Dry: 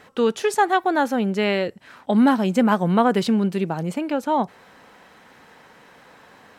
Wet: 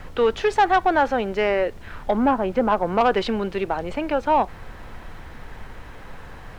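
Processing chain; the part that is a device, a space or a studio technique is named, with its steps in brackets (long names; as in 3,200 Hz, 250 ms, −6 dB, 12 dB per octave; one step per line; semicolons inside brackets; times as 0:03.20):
0:01.33–0:03.01: treble cut that deepens with the level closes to 1,100 Hz, closed at −14.5 dBFS
aircraft cabin announcement (band-pass filter 430–3,200 Hz; soft clipping −14.5 dBFS, distortion −15 dB; brown noise bed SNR 14 dB)
level +5 dB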